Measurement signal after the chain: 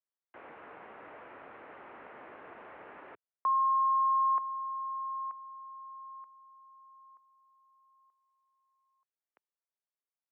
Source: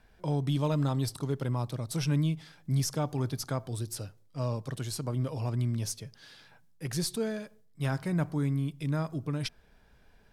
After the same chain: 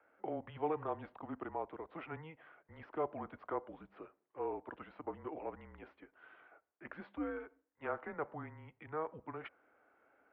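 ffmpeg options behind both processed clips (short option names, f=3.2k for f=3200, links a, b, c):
-filter_complex "[0:a]highpass=f=170:t=q:w=0.5412,highpass=f=170:t=q:w=1.307,lowpass=f=3k:t=q:w=0.5176,lowpass=f=3k:t=q:w=0.7071,lowpass=f=3k:t=q:w=1.932,afreqshift=-160,highpass=70,acrossover=split=320 2000:gain=0.1 1 0.0708[a][b][c];[a][b][c]amix=inputs=3:normalize=0"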